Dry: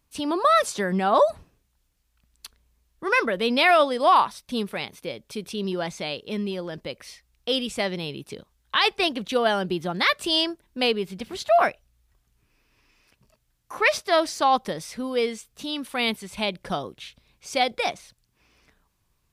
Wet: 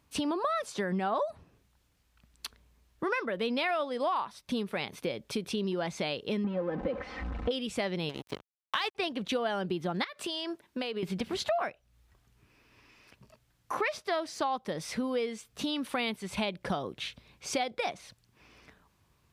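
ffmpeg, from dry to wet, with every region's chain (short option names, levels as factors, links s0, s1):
-filter_complex "[0:a]asettb=1/sr,asplit=3[s0][s1][s2];[s0]atrim=end=6.444[s3];[s1]atrim=start=6.44:end=7.51,asetpts=PTS-STARTPTS,afade=t=in:d=0.004:c=qsin,afade=t=out:st=1.066:d=0.004:c=qsin,aeval=exprs='val(0)+0.5*0.0266*sgn(val(0))':c=same,lowpass=1300,aecho=1:1:3.9:0.77,atrim=end_sample=47187[s4];[s2]atrim=start=7.506[s5];[s3][s4]acrossfade=d=0.004:c1=hsin:c2=qsin[s6];[s6][s5]acrossfade=d=0.004:c1=qsin:c2=hsin,asettb=1/sr,asplit=3[s7][s8][s9];[s7]atrim=end=8.094[s10];[s8]atrim=start=8.09:end=8.95,asetpts=PTS-STARTPTS,afade=t=in:d=0.004:c=qsin,afade=t=out:st=0.856:d=0.004:c=qsin,highshelf=f=6300:g=5,aeval=exprs='sgn(val(0))*max(abs(val(0))-0.015,0)':c=same[s11];[s9]atrim=start=8.946[s12];[s10][s11]acrossfade=d=0.004:c1=hsin:c2=qsin[s13];[s13][s12]acrossfade=d=0.004:c1=qsin:c2=hsin,asettb=1/sr,asplit=3[s14][s15][s16];[s14]atrim=end=10.044[s17];[s15]atrim=start=10.04:end=11.03,asetpts=PTS-STARTPTS,afade=t=in:d=0.004:c=qsin,afade=t=out:st=0.986:d=0.004:c=qsin,highpass=f=320:p=1,acompressor=threshold=0.02:ratio=8:attack=3.2:release=140:knee=1:detection=peak[s18];[s16]atrim=start=11.026[s19];[s17][s18]acrossfade=d=0.004:c1=hsin:c2=qsin[s20];[s20][s19]acrossfade=d=0.004:c1=qsin:c2=hsin,highpass=66,highshelf=f=5200:g=-8.5,acompressor=threshold=0.0178:ratio=6,volume=1.88"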